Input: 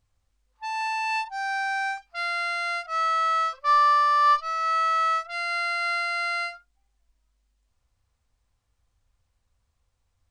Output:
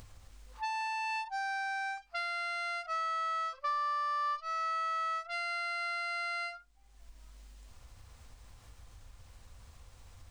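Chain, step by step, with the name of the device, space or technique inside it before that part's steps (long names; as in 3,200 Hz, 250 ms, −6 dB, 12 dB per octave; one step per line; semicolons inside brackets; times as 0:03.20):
upward and downward compression (upward compression, threshold −41 dBFS; downward compressor 6 to 1, threshold −36 dBFS, peak gain reduction 18 dB)
level +2.5 dB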